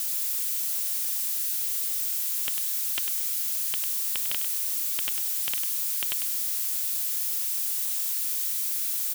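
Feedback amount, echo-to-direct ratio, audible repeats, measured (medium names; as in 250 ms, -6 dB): 18%, -8.0 dB, 2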